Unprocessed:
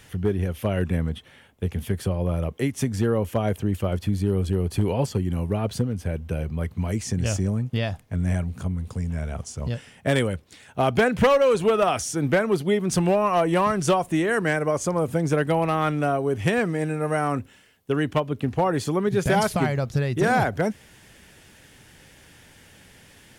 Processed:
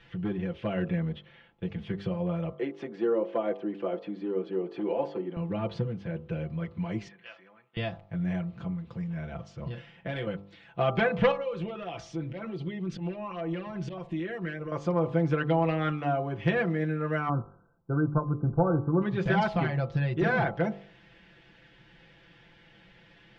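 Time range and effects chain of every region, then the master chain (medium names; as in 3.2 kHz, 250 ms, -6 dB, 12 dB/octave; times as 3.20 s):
2.54–5.37 s: high-pass 330 Hz 24 dB/octave + tilt EQ -3.5 dB/octave
7.08–7.77 s: high-pass 1.4 kHz + distance through air 390 m
9.65–10.27 s: compression 3:1, threshold -26 dBFS + doubling 39 ms -10.5 dB
11.31–14.72 s: slow attack 165 ms + compression 10:1, threshold -25 dBFS + LFO notch saw up 4.5 Hz 640–1900 Hz
17.29–19.02 s: brick-wall FIR low-pass 1.6 kHz + bass shelf 140 Hz +10 dB
whole clip: low-pass 3.8 kHz 24 dB/octave; comb 5.9 ms, depth 91%; de-hum 49.49 Hz, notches 27; trim -7 dB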